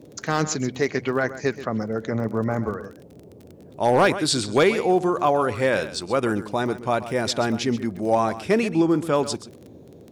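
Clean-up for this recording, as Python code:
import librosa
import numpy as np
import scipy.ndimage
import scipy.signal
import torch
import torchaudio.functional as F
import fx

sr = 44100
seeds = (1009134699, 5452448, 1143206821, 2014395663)

y = fx.fix_declip(x, sr, threshold_db=-10.0)
y = fx.fix_declick_ar(y, sr, threshold=6.5)
y = fx.noise_reduce(y, sr, print_start_s=3.07, print_end_s=3.57, reduce_db=22.0)
y = fx.fix_echo_inverse(y, sr, delay_ms=130, level_db=-14.0)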